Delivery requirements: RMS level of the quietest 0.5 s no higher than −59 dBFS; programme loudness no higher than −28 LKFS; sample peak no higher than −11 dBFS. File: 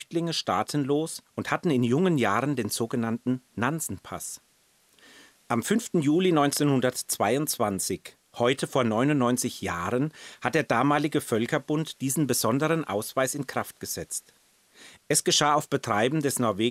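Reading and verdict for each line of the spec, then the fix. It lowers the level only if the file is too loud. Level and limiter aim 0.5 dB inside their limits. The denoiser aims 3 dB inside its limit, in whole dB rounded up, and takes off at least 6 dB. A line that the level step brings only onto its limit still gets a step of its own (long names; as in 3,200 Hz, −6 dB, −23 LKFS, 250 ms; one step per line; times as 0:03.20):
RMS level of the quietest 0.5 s −64 dBFS: in spec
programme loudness −26.0 LKFS: out of spec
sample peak −8.0 dBFS: out of spec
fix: level −2.5 dB
brickwall limiter −11.5 dBFS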